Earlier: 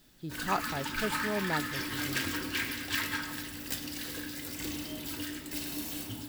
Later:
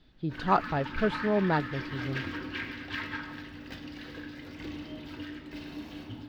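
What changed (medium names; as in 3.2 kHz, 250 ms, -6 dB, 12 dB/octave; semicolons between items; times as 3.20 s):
speech +8.0 dB; master: add distance through air 290 m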